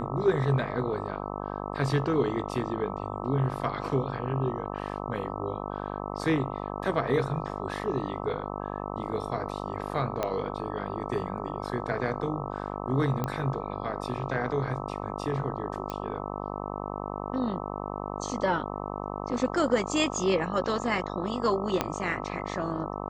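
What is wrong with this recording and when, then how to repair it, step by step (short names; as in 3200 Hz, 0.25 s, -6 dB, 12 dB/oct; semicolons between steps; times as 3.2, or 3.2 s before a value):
buzz 50 Hz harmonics 26 -35 dBFS
10.23 pop -14 dBFS
13.24 pop -16 dBFS
15.9 pop -19 dBFS
21.81 pop -10 dBFS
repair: de-click; de-hum 50 Hz, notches 26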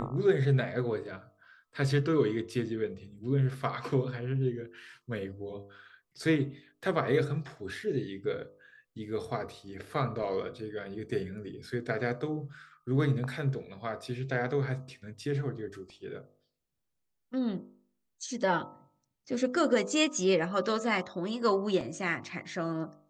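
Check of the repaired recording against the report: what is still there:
10.23 pop
21.81 pop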